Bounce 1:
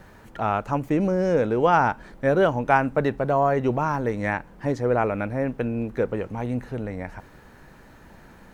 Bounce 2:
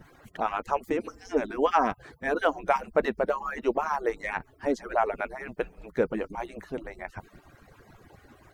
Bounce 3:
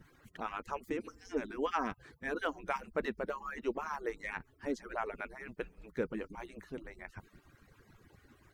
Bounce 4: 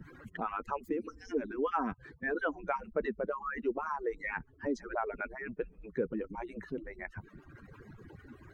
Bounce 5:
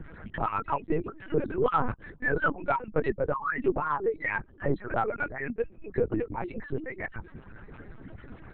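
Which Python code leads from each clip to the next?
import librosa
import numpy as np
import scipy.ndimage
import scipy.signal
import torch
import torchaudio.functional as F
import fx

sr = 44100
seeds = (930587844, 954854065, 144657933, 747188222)

y1 = fx.hpss_only(x, sr, part='percussive')
y2 = fx.peak_eq(y1, sr, hz=700.0, db=-9.0, octaves=0.97)
y2 = y2 * librosa.db_to_amplitude(-6.5)
y3 = fx.spec_expand(y2, sr, power=1.6)
y3 = fx.band_squash(y3, sr, depth_pct=40)
y3 = y3 * librosa.db_to_amplitude(3.0)
y4 = 10.0 ** (-19.5 / 20.0) * np.tanh(y3 / 10.0 ** (-19.5 / 20.0))
y4 = fx.lpc_vocoder(y4, sr, seeds[0], excitation='pitch_kept', order=8)
y4 = y4 * librosa.db_to_amplitude(7.5)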